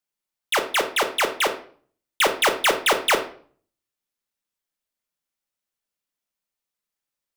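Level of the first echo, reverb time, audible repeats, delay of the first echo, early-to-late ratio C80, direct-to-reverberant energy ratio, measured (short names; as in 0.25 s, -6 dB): none, 0.45 s, none, none, 15.5 dB, 5.0 dB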